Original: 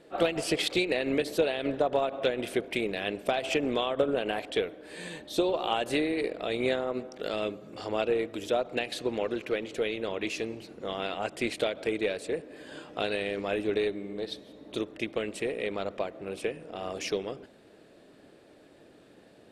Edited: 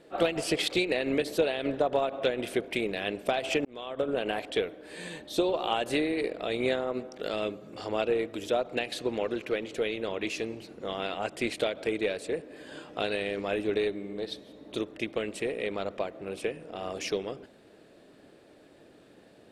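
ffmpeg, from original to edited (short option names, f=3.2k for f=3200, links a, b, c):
-filter_complex "[0:a]asplit=2[a][b];[a]atrim=end=3.65,asetpts=PTS-STARTPTS,afade=t=out:st=3.646:d=0.004:c=hsin[c];[b]atrim=start=3.65,asetpts=PTS-STARTPTS,afade=t=in:d=0.57[d];[c][d]concat=n=2:v=0:a=1"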